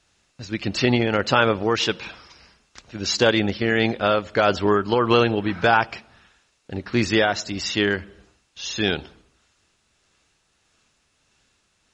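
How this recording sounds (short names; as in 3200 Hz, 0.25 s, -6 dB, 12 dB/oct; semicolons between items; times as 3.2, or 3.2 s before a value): tremolo triangle 1.6 Hz, depth 40%; a quantiser's noise floor 12-bit, dither triangular; AAC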